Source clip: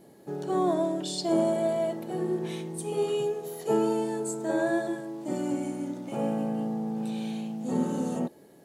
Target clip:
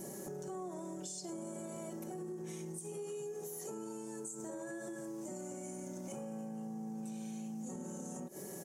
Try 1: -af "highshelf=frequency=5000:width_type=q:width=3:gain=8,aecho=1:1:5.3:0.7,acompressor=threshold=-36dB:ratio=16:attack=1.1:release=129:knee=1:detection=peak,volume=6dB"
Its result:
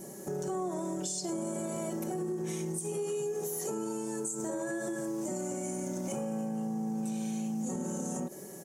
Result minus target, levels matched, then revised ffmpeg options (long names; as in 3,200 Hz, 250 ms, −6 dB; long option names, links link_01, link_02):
downward compressor: peak gain reduction −9 dB
-af "highshelf=frequency=5000:width_type=q:width=3:gain=8,aecho=1:1:5.3:0.7,acompressor=threshold=-45.5dB:ratio=16:attack=1.1:release=129:knee=1:detection=peak,volume=6dB"